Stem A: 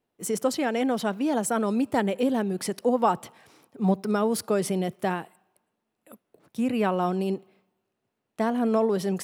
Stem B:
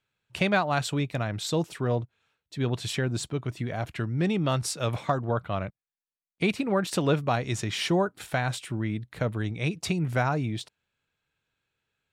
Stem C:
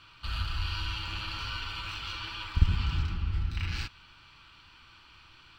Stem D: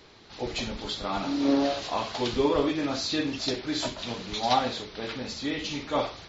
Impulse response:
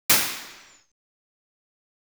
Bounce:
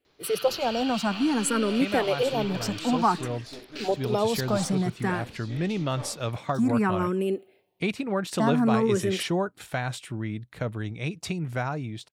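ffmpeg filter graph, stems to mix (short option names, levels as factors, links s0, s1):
-filter_complex "[0:a]asplit=2[s0][s1];[s1]afreqshift=0.54[s2];[s0][s2]amix=inputs=2:normalize=1,volume=1.41,asplit=2[s3][s4];[1:a]dynaudnorm=f=490:g=9:m=2,adelay=1400,volume=0.398[s5];[2:a]highpass=1500,volume=1.12[s6];[3:a]aeval=exprs='(tanh(20*val(0)+0.65)-tanh(0.65))/20':c=same,adelay=50,volume=0.355[s7];[s4]apad=whole_len=246235[s8];[s6][s8]sidechaingate=range=0.0224:threshold=0.00398:ratio=16:detection=peak[s9];[s3][s5][s9][s7]amix=inputs=4:normalize=0"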